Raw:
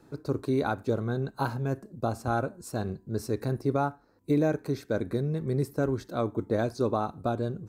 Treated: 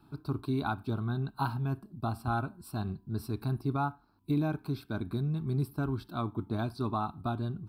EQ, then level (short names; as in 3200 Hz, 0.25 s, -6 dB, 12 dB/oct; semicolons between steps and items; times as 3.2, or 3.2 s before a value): fixed phaser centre 1900 Hz, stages 6; 0.0 dB